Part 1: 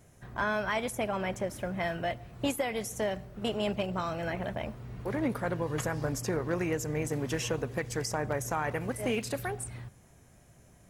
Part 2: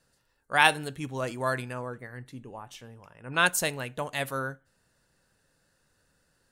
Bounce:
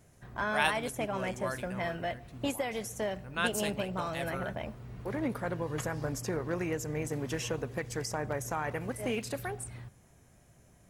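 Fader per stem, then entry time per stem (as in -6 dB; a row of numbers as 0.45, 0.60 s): -2.5, -8.5 dB; 0.00, 0.00 s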